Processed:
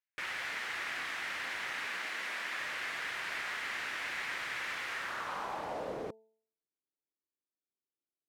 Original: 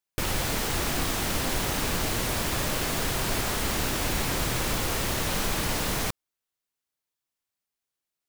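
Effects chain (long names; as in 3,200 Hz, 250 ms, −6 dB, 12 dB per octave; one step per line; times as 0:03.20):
band-pass filter sweep 1,900 Hz → 330 Hz, 0:04.91–0:06.29
0:01.87–0:02.61: Butterworth high-pass 160 Hz 36 dB per octave
hum removal 220.7 Hz, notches 4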